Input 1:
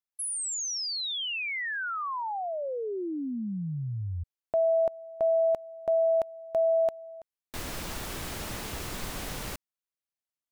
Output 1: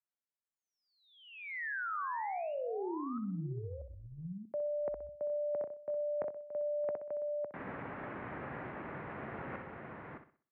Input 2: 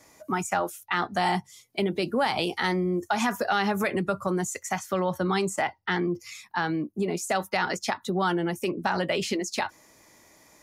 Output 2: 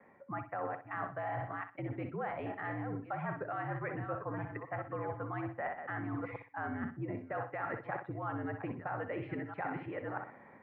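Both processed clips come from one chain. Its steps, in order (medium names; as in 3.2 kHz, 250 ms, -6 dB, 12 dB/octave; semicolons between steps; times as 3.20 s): chunks repeated in reverse 636 ms, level -10 dB; level rider gain up to 6 dB; on a send: flutter echo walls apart 10.8 m, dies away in 0.4 s; on the sum: dynamic bell 360 Hz, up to -6 dB, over -35 dBFS, Q 4.4; reverse; compression 8:1, threshold -32 dBFS; reverse; mistuned SSB -66 Hz 180–2100 Hz; trim -3 dB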